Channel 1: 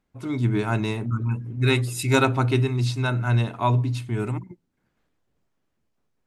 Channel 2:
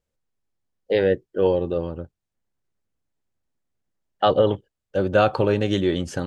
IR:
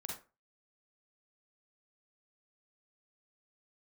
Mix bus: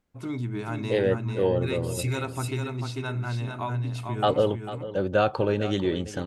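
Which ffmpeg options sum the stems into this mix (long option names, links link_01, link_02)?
-filter_complex "[0:a]acompressor=threshold=-26dB:ratio=6,volume=-2dB,asplit=2[link_01][link_02];[link_02]volume=-5dB[link_03];[1:a]volume=-4.5dB,asplit=2[link_04][link_05];[link_05]volume=-14dB[link_06];[link_03][link_06]amix=inputs=2:normalize=0,aecho=0:1:446:1[link_07];[link_01][link_04][link_07]amix=inputs=3:normalize=0"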